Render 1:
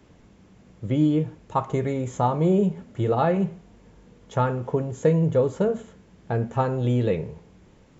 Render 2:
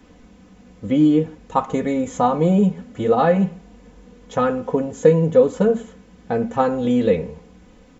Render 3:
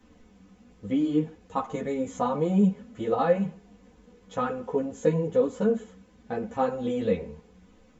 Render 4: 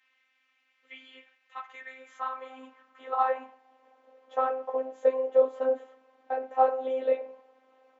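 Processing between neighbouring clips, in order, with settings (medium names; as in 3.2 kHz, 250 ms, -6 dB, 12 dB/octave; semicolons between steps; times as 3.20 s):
comb 4 ms, depth 79%; trim +3.5 dB
three-phase chorus; trim -5 dB
band-pass 130–2800 Hz; robot voice 261 Hz; high-pass sweep 2.2 kHz -> 650 Hz, 1.33–4.17 s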